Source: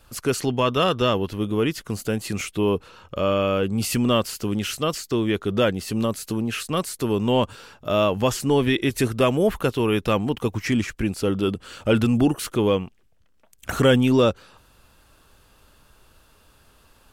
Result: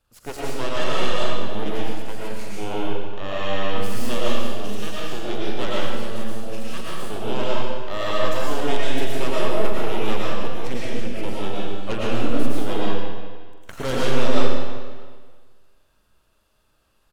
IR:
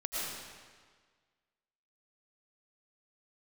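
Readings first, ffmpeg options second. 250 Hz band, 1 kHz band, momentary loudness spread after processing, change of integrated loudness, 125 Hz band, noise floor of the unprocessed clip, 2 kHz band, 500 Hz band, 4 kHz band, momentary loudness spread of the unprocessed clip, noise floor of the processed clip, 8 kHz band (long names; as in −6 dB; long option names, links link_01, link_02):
−7.0 dB, −1.0 dB, 9 LU, −4.5 dB, −6.5 dB, −58 dBFS, −1.0 dB, −4.0 dB, −2.0 dB, 7 LU, −63 dBFS, −6.0 dB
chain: -filter_complex "[0:a]asplit=2[link_01][link_02];[link_02]adelay=45,volume=-10.5dB[link_03];[link_01][link_03]amix=inputs=2:normalize=0,aeval=exprs='0.501*(cos(1*acos(clip(val(0)/0.501,-1,1)))-cos(1*PI/2))+0.126*(cos(6*acos(clip(val(0)/0.501,-1,1)))-cos(6*PI/2))+0.0316*(cos(7*acos(clip(val(0)/0.501,-1,1)))-cos(7*PI/2))':channel_layout=same[link_04];[1:a]atrim=start_sample=2205[link_05];[link_04][link_05]afir=irnorm=-1:irlink=0,volume=-10dB"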